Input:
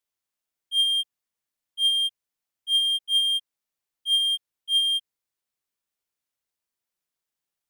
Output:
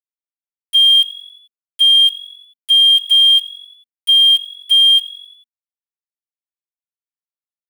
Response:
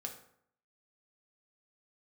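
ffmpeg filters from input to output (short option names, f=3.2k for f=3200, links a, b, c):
-filter_complex "[0:a]agate=range=-12dB:threshold=-29dB:ratio=16:detection=peak,equalizer=f=2.9k:w=2.7:g=14.5,alimiter=limit=-13dB:level=0:latency=1:release=17,aeval=exprs='val(0)*gte(abs(val(0)),0.0316)':c=same,asplit=2[a][b];[b]asplit=5[c][d][e][f][g];[c]adelay=89,afreqshift=45,volume=-20.5dB[h];[d]adelay=178,afreqshift=90,volume=-24.8dB[i];[e]adelay=267,afreqshift=135,volume=-29.1dB[j];[f]adelay=356,afreqshift=180,volume=-33.4dB[k];[g]adelay=445,afreqshift=225,volume=-37.7dB[l];[h][i][j][k][l]amix=inputs=5:normalize=0[m];[a][m]amix=inputs=2:normalize=0,volume=6.5dB"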